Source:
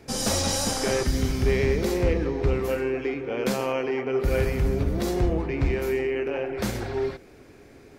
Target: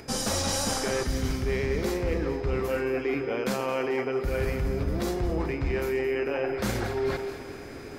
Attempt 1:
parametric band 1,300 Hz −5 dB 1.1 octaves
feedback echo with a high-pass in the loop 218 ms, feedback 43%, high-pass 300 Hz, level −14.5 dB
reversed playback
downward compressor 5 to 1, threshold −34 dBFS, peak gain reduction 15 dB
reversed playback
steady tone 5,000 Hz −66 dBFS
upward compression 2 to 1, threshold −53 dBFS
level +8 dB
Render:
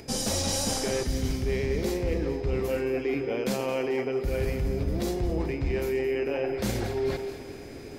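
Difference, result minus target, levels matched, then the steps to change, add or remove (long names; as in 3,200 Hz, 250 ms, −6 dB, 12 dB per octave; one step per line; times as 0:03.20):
1,000 Hz band −3.5 dB
change: parametric band 1,300 Hz +3.5 dB 1.1 octaves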